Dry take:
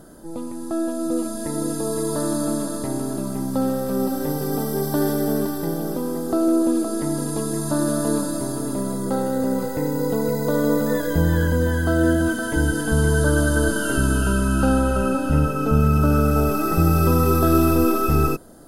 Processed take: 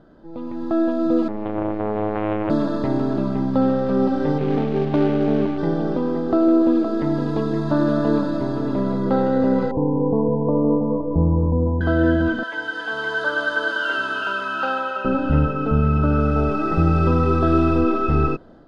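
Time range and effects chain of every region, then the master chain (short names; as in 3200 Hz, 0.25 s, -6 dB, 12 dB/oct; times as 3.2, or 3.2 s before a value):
1.28–2.5 robotiser 106 Hz + air absorption 430 m + Doppler distortion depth 0.99 ms
4.38–5.58 median filter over 25 samples + high shelf 3900 Hz +9 dB
9.71–11.81 steep low-pass 1100 Hz 96 dB/oct + dynamic EQ 580 Hz, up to -5 dB, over -36 dBFS, Q 3.4
12.43–15.05 HPF 870 Hz + high shelf 12000 Hz +8.5 dB
16.2–17.81 bell 11000 Hz +9.5 dB 0.91 oct + companded quantiser 8-bit
whole clip: LPF 3600 Hz 24 dB/oct; AGC; gain -5.5 dB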